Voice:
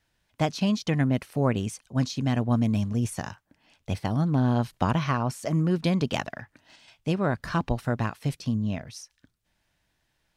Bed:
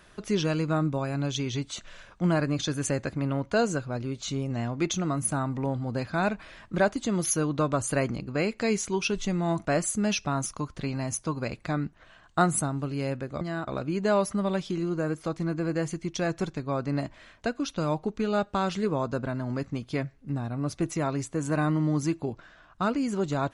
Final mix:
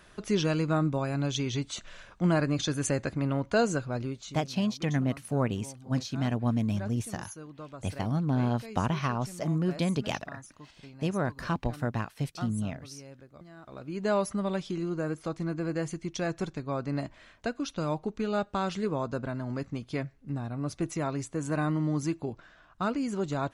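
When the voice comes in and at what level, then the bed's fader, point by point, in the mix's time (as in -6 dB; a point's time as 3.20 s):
3.95 s, -4.0 dB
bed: 4.05 s -0.5 dB
4.49 s -18 dB
13.56 s -18 dB
14.07 s -3 dB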